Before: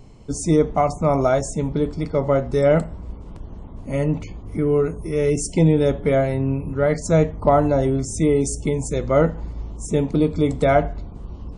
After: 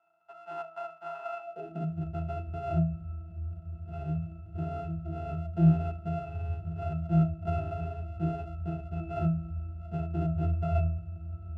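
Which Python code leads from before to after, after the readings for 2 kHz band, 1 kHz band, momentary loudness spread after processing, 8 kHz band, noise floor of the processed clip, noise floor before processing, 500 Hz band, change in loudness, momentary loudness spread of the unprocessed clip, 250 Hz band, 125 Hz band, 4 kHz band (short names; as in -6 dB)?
-19.0 dB, -13.5 dB, 13 LU, under -40 dB, -49 dBFS, -37 dBFS, -20.5 dB, -12.5 dB, 16 LU, -11.5 dB, -6.5 dB, under -20 dB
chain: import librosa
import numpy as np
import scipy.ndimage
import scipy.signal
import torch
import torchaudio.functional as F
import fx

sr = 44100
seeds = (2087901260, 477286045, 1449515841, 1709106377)

y = np.r_[np.sort(x[:len(x) // 64 * 64].reshape(-1, 64), axis=1).ravel(), x[len(x) // 64 * 64:]]
y = fx.filter_sweep_highpass(y, sr, from_hz=1000.0, to_hz=79.0, start_s=1.39, end_s=2.04, q=4.3)
y = fx.octave_resonator(y, sr, note='E', decay_s=0.38)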